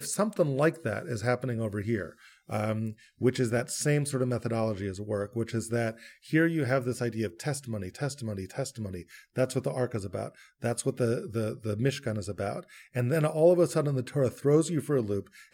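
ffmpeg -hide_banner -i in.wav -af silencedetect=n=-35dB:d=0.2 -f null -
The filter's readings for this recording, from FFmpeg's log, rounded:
silence_start: 2.09
silence_end: 2.50 | silence_duration: 0.40
silence_start: 2.91
silence_end: 3.21 | silence_duration: 0.30
silence_start: 5.91
silence_end: 6.33 | silence_duration: 0.41
silence_start: 9.01
silence_end: 9.37 | silence_duration: 0.36
silence_start: 10.28
silence_end: 10.64 | silence_duration: 0.35
silence_start: 12.60
silence_end: 12.96 | silence_duration: 0.35
silence_start: 15.20
silence_end: 15.54 | silence_duration: 0.33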